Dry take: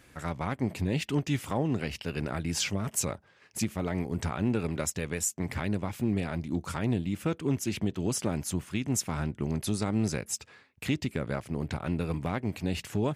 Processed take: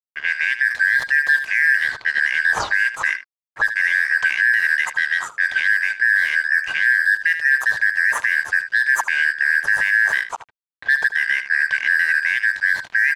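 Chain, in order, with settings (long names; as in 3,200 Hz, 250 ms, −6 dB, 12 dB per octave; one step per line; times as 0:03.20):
band-splitting scrambler in four parts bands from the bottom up 4123
octave-band graphic EQ 125/250/500/1,000/2,000/4,000/8,000 Hz +7/−9/+3/+9/+8/−5/−6 dB
dead-zone distortion −40 dBFS
single-tap delay 77 ms −13.5 dB
low-pass that shuts in the quiet parts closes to 2,000 Hz, open at −17.5 dBFS
brickwall limiter −14 dBFS, peak gain reduction 6.5 dB
level +7 dB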